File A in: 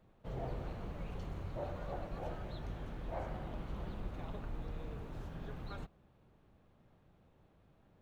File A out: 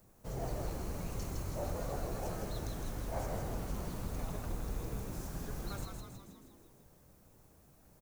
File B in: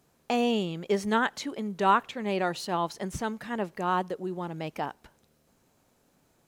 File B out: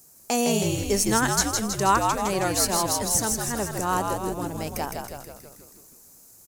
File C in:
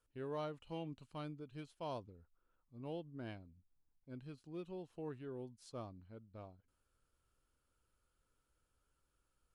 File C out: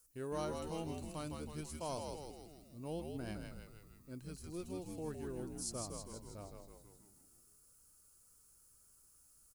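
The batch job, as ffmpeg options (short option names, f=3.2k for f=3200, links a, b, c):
-filter_complex "[0:a]aexciter=amount=6.4:drive=7.6:freq=5k,asplit=9[a][b][c][d][e][f][g][h][i];[b]adelay=160,afreqshift=-74,volume=-4dB[j];[c]adelay=320,afreqshift=-148,volume=-8.7dB[k];[d]adelay=480,afreqshift=-222,volume=-13.5dB[l];[e]adelay=640,afreqshift=-296,volume=-18.2dB[m];[f]adelay=800,afreqshift=-370,volume=-22.9dB[n];[g]adelay=960,afreqshift=-444,volume=-27.7dB[o];[h]adelay=1120,afreqshift=-518,volume=-32.4dB[p];[i]adelay=1280,afreqshift=-592,volume=-37.1dB[q];[a][j][k][l][m][n][o][p][q]amix=inputs=9:normalize=0,volume=1.5dB"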